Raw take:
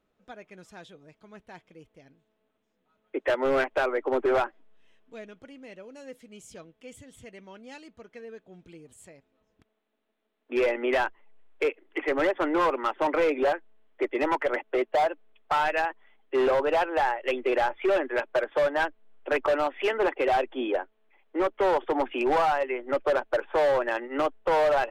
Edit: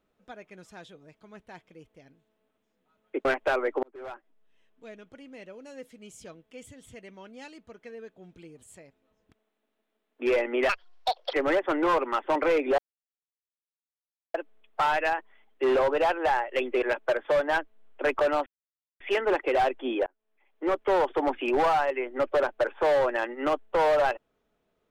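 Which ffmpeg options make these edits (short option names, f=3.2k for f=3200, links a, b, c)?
-filter_complex "[0:a]asplit=10[a][b][c][d][e][f][g][h][i][j];[a]atrim=end=3.252[k];[b]atrim=start=3.548:end=4.13,asetpts=PTS-STARTPTS,afade=t=out:st=0.578:d=0.004:c=hsin[l];[c]atrim=start=4.13:end=10.994,asetpts=PTS-STARTPTS,afade=t=in:d=1.49[m];[d]atrim=start=10.99:end=12.05,asetpts=PTS-STARTPTS,asetrate=72765,aresample=44100[n];[e]atrim=start=12.046:end=13.5,asetpts=PTS-STARTPTS,afade=t=out:st=1.45:d=0.004:c=hsin[o];[f]atrim=start=13.5:end=15.06,asetpts=PTS-STARTPTS,volume=0[p];[g]atrim=start=15.06:end=17.542,asetpts=PTS-STARTPTS,afade=t=in:d=0.004:c=hsin[q];[h]atrim=start=18.088:end=19.73,asetpts=PTS-STARTPTS,afade=t=out:st=1.638:d=0.004:c=hsin,apad=pad_dur=0.54[r];[i]atrim=start=19.73:end=20.79,asetpts=PTS-STARTPTS,afade=t=in:d=0.004:c=hsin,afade=t=out:st=1.056:d=0.004:c=hsin[s];[j]atrim=start=20.79,asetpts=PTS-STARTPTS,afade=t=in:d=0.7[t];[l][m]concat=n=2:v=0:a=1[u];[k][u]acrossfade=d=0.004:c1=hsin:c2=hsin[v];[v][n]acrossfade=d=0.004:c1=hsin:c2=hsin[w];[o][p][q]concat=n=3:v=0:a=1[x];[w][x]acrossfade=d=0.004:c1=hsin:c2=hsin[y];[r][s][t]concat=n=3:v=0:a=1[z];[y][z]acrossfade=d=0.004:c1=hsin:c2=hsin"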